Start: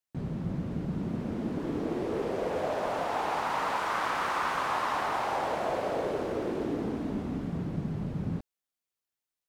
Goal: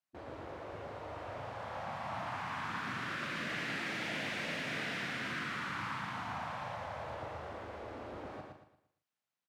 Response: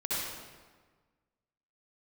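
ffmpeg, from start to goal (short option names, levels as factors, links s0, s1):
-filter_complex "[0:a]highpass=f=110:w=0.5412,highpass=f=110:w=1.3066,afftfilt=real='re*lt(hypot(re,im),0.0501)':imag='im*lt(hypot(re,im),0.0501)':win_size=1024:overlap=0.75,lowpass=f=2300:p=1,equalizer=f=400:t=o:w=0.51:g=-8,asplit=2[s0][s1];[s1]adelay=39,volume=0.473[s2];[s0][s2]amix=inputs=2:normalize=0,aecho=1:1:115|230|345|460|575:0.631|0.227|0.0818|0.0294|0.0106,volume=1.26"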